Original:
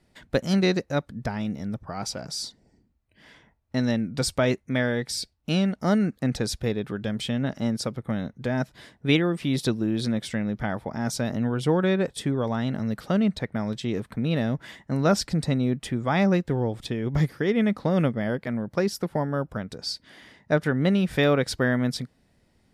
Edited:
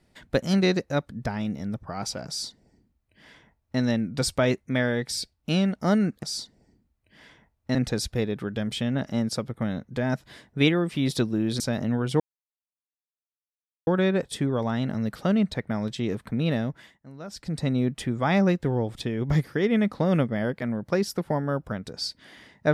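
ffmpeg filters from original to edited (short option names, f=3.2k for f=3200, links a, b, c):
-filter_complex "[0:a]asplit=7[a][b][c][d][e][f][g];[a]atrim=end=6.232[h];[b]atrim=start=2.278:end=3.802[i];[c]atrim=start=6.228:end=10.082[j];[d]atrim=start=11.118:end=11.72,asetpts=PTS-STARTPTS,afade=t=out:st=0.598:d=0.004:c=hsin,apad=pad_dur=1.67[k];[e]atrim=start=11.72:end=14.85,asetpts=PTS-STARTPTS,afade=t=in:d=0.004:c=hsin,afade=t=out:st=2.65:d=0.48:silence=0.112202[l];[f]atrim=start=14.85:end=15.13,asetpts=PTS-STARTPTS,volume=-19dB[m];[g]atrim=start=15.13,asetpts=PTS-STARTPTS,afade=t=in:d=0.48:silence=0.112202[n];[h][i]acrossfade=d=0.004:c1=hsin:c2=hsin[o];[o][j]acrossfade=d=0.004:c1=hsin:c2=hsin[p];[k][l][m][n]concat=n=4:v=0:a=1[q];[p][q]acrossfade=d=0.004:c1=hsin:c2=hsin"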